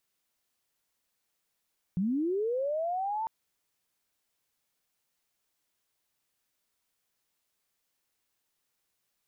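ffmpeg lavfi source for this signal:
ffmpeg -f lavfi -i "aevalsrc='pow(10,(-25.5-4*t/1.3)/20)*sin(2*PI*(170*t+740*t*t/(2*1.3)))':duration=1.3:sample_rate=44100" out.wav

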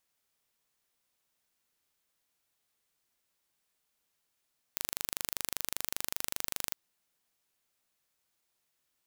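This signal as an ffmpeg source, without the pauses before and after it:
ffmpeg -f lavfi -i "aevalsrc='0.531*eq(mod(n,1757),0)':duration=1.98:sample_rate=44100" out.wav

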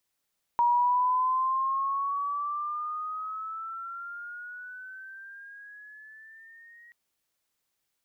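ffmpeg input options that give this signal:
ffmpeg -f lavfi -i "aevalsrc='pow(10,(-19.5-30.5*t/6.33)/20)*sin(2*PI*950*6.33/(12*log(2)/12)*(exp(12*log(2)/12*t/6.33)-1))':duration=6.33:sample_rate=44100" out.wav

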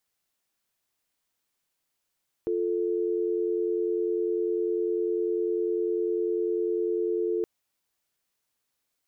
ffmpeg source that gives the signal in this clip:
ffmpeg -f lavfi -i "aevalsrc='0.0447*(sin(2*PI*350*t)+sin(2*PI*440*t))':duration=4.97:sample_rate=44100" out.wav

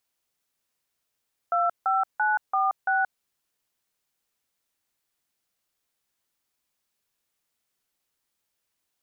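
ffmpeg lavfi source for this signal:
ffmpeg -f lavfi -i "aevalsrc='0.0708*clip(min(mod(t,0.338),0.177-mod(t,0.338))/0.002,0,1)*(eq(floor(t/0.338),0)*(sin(2*PI*697*mod(t,0.338))+sin(2*PI*1336*mod(t,0.338)))+eq(floor(t/0.338),1)*(sin(2*PI*770*mod(t,0.338))+sin(2*PI*1336*mod(t,0.338)))+eq(floor(t/0.338),2)*(sin(2*PI*852*mod(t,0.338))+sin(2*PI*1477*mod(t,0.338)))+eq(floor(t/0.338),3)*(sin(2*PI*770*mod(t,0.338))+sin(2*PI*1209*mod(t,0.338)))+eq(floor(t/0.338),4)*(sin(2*PI*770*mod(t,0.338))+sin(2*PI*1477*mod(t,0.338))))':duration=1.69:sample_rate=44100" out.wav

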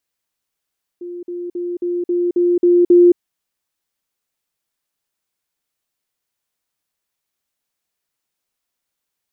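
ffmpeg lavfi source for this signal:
ffmpeg -f lavfi -i "aevalsrc='pow(10,(-26.5+3*floor(t/0.27))/20)*sin(2*PI*351*t)*clip(min(mod(t,0.27),0.22-mod(t,0.27))/0.005,0,1)':duration=2.16:sample_rate=44100" out.wav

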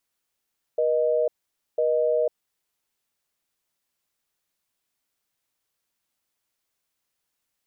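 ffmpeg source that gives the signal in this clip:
ffmpeg -f lavfi -i "aevalsrc='0.0794*(sin(2*PI*480*t)+sin(2*PI*620*t))*clip(min(mod(t,1),0.5-mod(t,1))/0.005,0,1)':duration=1.73:sample_rate=44100" out.wav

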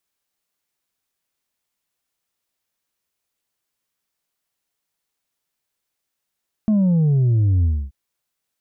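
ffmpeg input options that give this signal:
ffmpeg -f lavfi -i "aevalsrc='0.2*clip((1.23-t)/0.27,0,1)*tanh(1.41*sin(2*PI*220*1.23/log(65/220)*(exp(log(65/220)*t/1.23)-1)))/tanh(1.41)':duration=1.23:sample_rate=44100" out.wav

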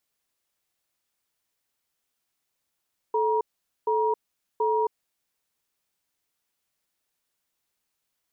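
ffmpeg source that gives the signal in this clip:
ffmpeg -f lavfi -i "aevalsrc='0.0668*(sin(2*PI*436*t)+sin(2*PI*950*t))*clip(min(mod(t,0.73),0.27-mod(t,0.73))/0.005,0,1)':duration=2.09:sample_rate=44100" out.wav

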